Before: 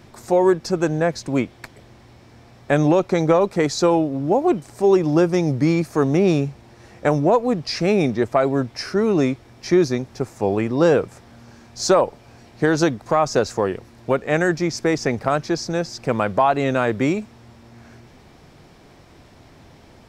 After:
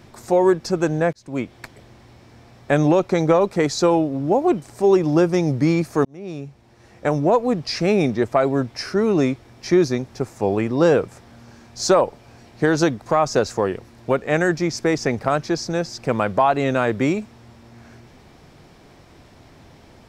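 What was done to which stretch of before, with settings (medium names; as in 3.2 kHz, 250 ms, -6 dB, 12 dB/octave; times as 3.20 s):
1.13–1.57 s: fade in
6.05–7.39 s: fade in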